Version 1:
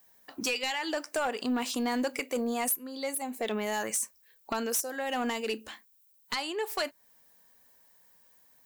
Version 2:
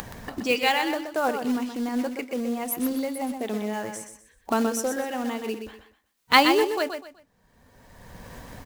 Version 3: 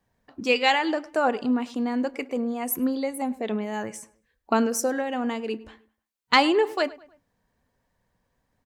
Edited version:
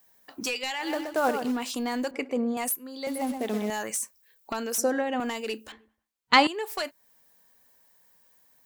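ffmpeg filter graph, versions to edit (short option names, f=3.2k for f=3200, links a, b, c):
-filter_complex "[1:a]asplit=2[a][b];[2:a]asplit=3[c][d][e];[0:a]asplit=6[f][g][h][i][j][k];[f]atrim=end=1.01[l];[a]atrim=start=0.77:end=1.63[m];[g]atrim=start=1.39:end=2.112[n];[c]atrim=start=2.108:end=2.572[o];[h]atrim=start=2.568:end=3.072[p];[b]atrim=start=3.068:end=3.702[q];[i]atrim=start=3.698:end=4.782[r];[d]atrim=start=4.778:end=5.202[s];[j]atrim=start=5.198:end=5.722[t];[e]atrim=start=5.718:end=6.472[u];[k]atrim=start=6.468[v];[l][m]acrossfade=d=0.24:c1=tri:c2=tri[w];[w][n]acrossfade=d=0.24:c1=tri:c2=tri[x];[x][o]acrossfade=d=0.004:c1=hsin:c2=hsin[y];[y][p]acrossfade=d=0.004:c1=hsin:c2=hsin[z];[z][q]acrossfade=d=0.004:c1=hsin:c2=hsin[aa];[aa][r]acrossfade=d=0.004:c1=hsin:c2=hsin[ab];[ab][s]acrossfade=d=0.004:c1=hsin:c2=hsin[ac];[ac][t]acrossfade=d=0.004:c1=hsin:c2=hsin[ad];[ad][u]acrossfade=d=0.004:c1=hsin:c2=hsin[ae];[ae][v]acrossfade=d=0.004:c1=hsin:c2=hsin"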